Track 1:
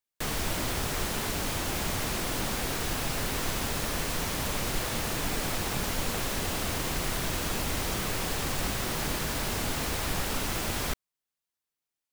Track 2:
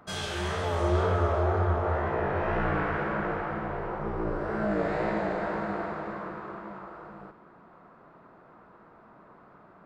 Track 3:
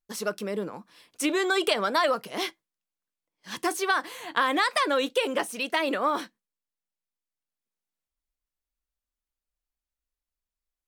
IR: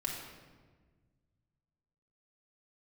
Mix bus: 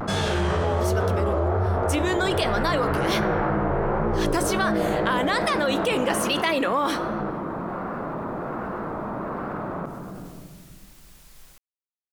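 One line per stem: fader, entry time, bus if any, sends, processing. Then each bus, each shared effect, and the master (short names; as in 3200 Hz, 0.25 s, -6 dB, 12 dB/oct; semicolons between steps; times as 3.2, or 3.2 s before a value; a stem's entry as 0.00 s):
off
-3.5 dB, 0.00 s, send -14 dB, tilt shelf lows +4.5 dB, about 1300 Hz
-2.5 dB, 0.70 s, send -16 dB, dry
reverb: on, RT60 1.5 s, pre-delay 4 ms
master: vocal rider within 4 dB; vibrato 1.3 Hz 85 cents; fast leveller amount 70%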